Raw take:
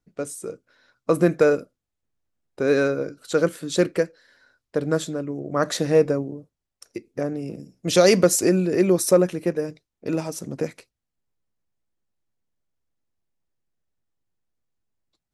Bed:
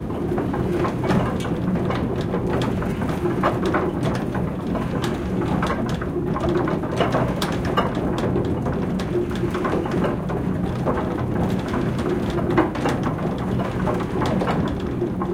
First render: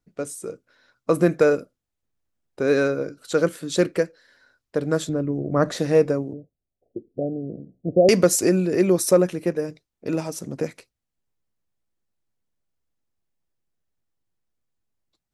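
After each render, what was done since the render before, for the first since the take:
0:05.09–0:05.77: spectral tilt −2.5 dB per octave
0:06.33–0:08.09: Butterworth low-pass 750 Hz 96 dB per octave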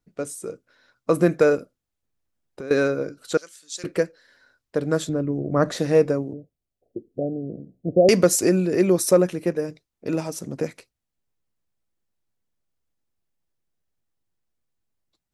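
0:01.58–0:02.71: downward compressor, threshold −31 dBFS
0:03.37–0:03.84: resonant band-pass 6,400 Hz, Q 1.6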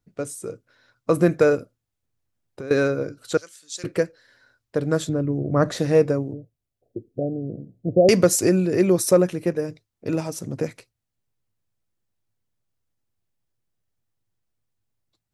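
parametric band 110 Hz +10.5 dB 0.51 octaves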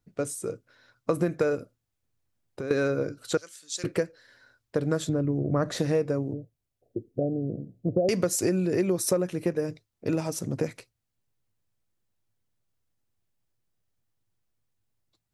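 downward compressor 5 to 1, threshold −22 dBFS, peak gain reduction 11 dB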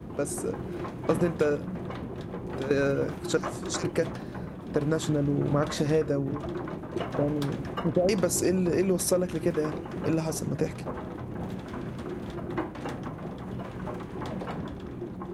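mix in bed −13.5 dB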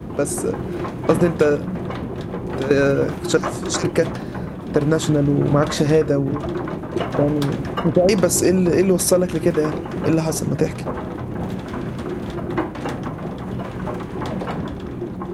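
level +9 dB

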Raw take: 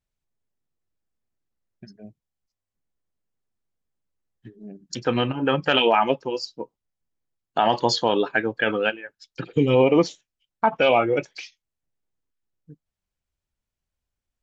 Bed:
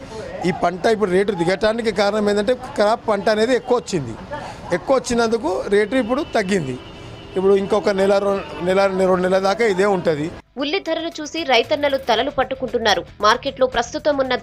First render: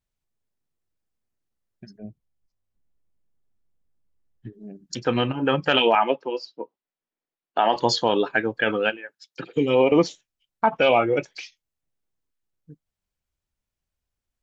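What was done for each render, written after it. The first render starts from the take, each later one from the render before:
0:01.98–0:04.53: spectral tilt −2 dB per octave
0:05.95–0:07.76: three-way crossover with the lows and the highs turned down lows −23 dB, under 220 Hz, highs −22 dB, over 4,400 Hz
0:08.97–0:09.92: Bessel high-pass filter 240 Hz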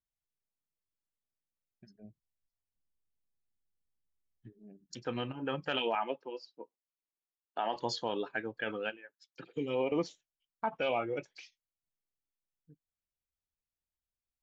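level −14 dB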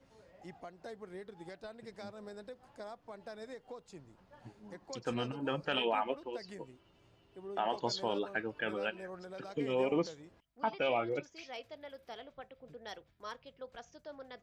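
mix in bed −30.5 dB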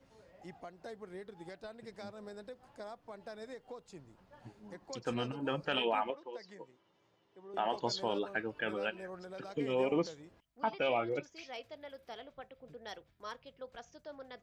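0:06.10–0:07.54: loudspeaker in its box 240–6,300 Hz, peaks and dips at 260 Hz −8 dB, 380 Hz −5 dB, 670 Hz −6 dB, 1,400 Hz −5 dB, 2,700 Hz −10 dB, 4,500 Hz −6 dB

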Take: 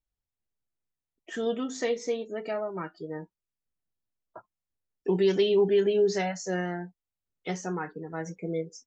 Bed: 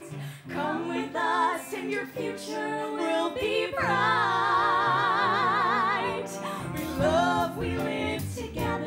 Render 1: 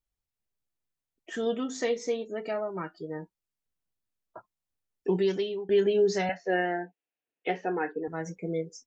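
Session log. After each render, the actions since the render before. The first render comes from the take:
0:05.08–0:05.69: fade out, to −23 dB
0:06.29–0:08.08: loudspeaker in its box 280–3,300 Hz, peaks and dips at 300 Hz +8 dB, 460 Hz +8 dB, 720 Hz +7 dB, 1,200 Hz −7 dB, 1,700 Hz +7 dB, 2,600 Hz +9 dB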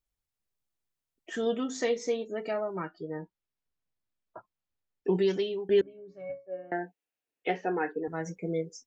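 0:02.85–0:05.15: high-frequency loss of the air 110 metres
0:05.81–0:06.72: resonances in every octave C#, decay 0.26 s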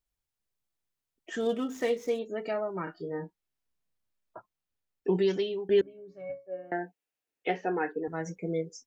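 0:01.40–0:02.19: running median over 9 samples
0:02.84–0:04.37: double-tracking delay 30 ms −3 dB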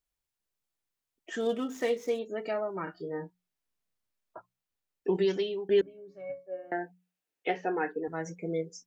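low-shelf EQ 180 Hz −4 dB
mains-hum notches 60/120/180 Hz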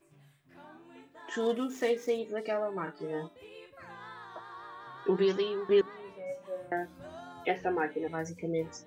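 mix in bed −23 dB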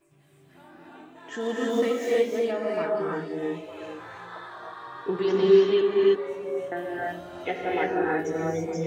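echo through a band-pass that steps 454 ms, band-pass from 340 Hz, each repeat 1.4 octaves, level −10 dB
reverb whose tail is shaped and stops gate 360 ms rising, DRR −4.5 dB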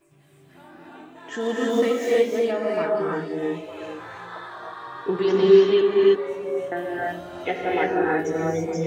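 level +3.5 dB

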